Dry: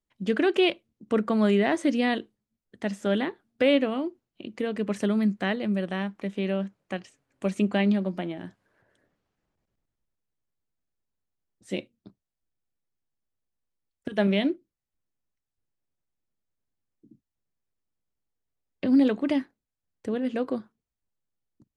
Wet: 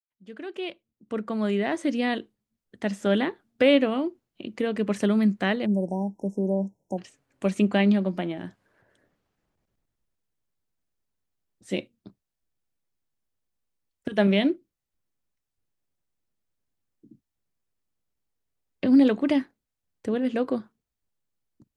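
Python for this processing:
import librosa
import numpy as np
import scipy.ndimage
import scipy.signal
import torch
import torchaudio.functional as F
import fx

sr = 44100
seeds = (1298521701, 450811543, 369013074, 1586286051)

y = fx.fade_in_head(x, sr, length_s=3.1)
y = fx.spec_erase(y, sr, start_s=5.66, length_s=1.32, low_hz=990.0, high_hz=5200.0)
y = y * 10.0 ** (2.5 / 20.0)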